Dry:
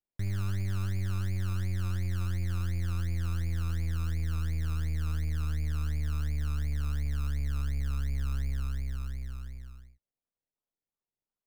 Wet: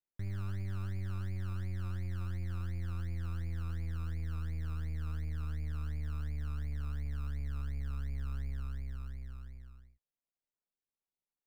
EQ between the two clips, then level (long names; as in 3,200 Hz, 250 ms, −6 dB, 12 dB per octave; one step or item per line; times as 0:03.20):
low-shelf EQ 350 Hz −3 dB
high-shelf EQ 2,600 Hz −10.5 dB
notch filter 6,400 Hz, Q 14
−3.5 dB